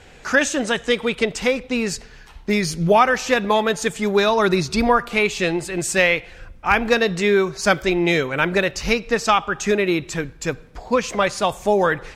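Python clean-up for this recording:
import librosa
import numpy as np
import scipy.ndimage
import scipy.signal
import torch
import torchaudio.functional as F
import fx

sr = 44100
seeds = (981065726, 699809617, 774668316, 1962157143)

y = fx.fix_declip(x, sr, threshold_db=-4.0)
y = fx.fix_interpolate(y, sr, at_s=(7.66,), length_ms=1.9)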